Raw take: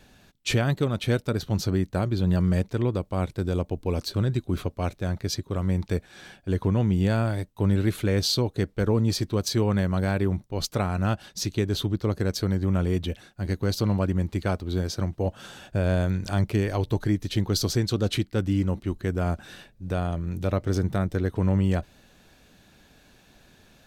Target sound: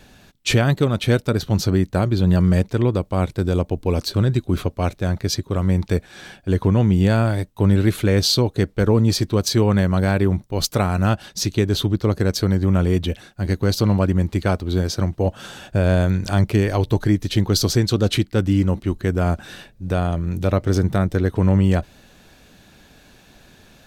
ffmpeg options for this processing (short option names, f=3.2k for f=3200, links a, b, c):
-filter_complex "[0:a]asettb=1/sr,asplit=3[a][b][c];[a]atrim=end=10.484[d];[b]atrim=start=10.48:end=11.09,asetpts=PTS-STARTPTS,afade=t=in:d=0.004:c=qsin,afade=t=out:st=0.606:d=0.004:c=qsin,highshelf=f=8.4k:g=6[e];[c]atrim=start=11.086[f];[d][e]acrossfade=d=0.004:c1=hsin:c2=qsin[g];[g][f]acrossfade=d=0.004:c1=qsin:c2=hsin,volume=6.5dB"